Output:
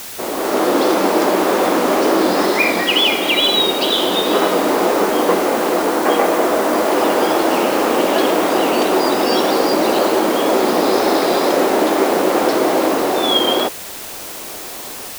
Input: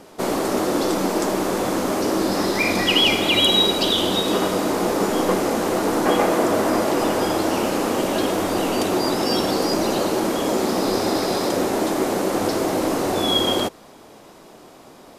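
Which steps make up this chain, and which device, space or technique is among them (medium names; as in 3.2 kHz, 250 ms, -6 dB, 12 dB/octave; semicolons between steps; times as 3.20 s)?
dictaphone (band-pass 310–3900 Hz; level rider; wow and flutter; white noise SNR 15 dB); trim -1 dB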